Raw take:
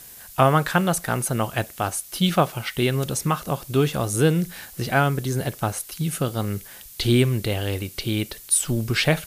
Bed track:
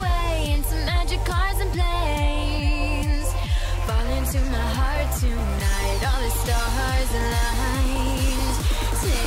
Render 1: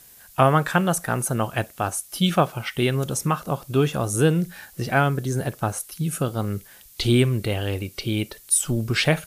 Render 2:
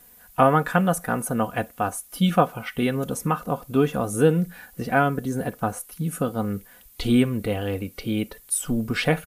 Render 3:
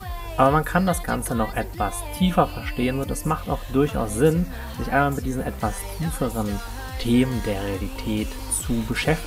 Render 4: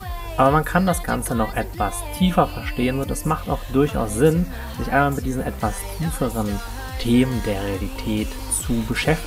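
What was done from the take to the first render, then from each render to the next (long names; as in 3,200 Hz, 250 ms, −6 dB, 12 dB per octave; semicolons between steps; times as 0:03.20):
noise reduction from a noise print 6 dB
parametric band 5,400 Hz −9.5 dB 2.2 octaves; comb filter 4.1 ms, depth 55%
mix in bed track −10.5 dB
level +2 dB; brickwall limiter −3 dBFS, peak gain reduction 2 dB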